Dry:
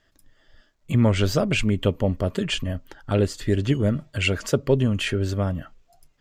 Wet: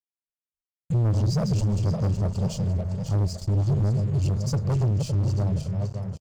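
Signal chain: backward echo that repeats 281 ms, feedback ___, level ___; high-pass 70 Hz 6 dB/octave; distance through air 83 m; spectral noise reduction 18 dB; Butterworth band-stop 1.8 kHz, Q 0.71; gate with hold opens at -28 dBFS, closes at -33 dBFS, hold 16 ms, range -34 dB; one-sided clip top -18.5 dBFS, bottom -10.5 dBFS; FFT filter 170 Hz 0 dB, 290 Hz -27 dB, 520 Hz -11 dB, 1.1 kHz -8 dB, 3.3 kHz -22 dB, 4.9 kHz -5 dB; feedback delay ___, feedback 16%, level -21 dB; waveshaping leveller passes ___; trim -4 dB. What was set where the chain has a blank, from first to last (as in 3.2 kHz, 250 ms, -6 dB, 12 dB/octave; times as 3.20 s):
60%, -6 dB, 599 ms, 3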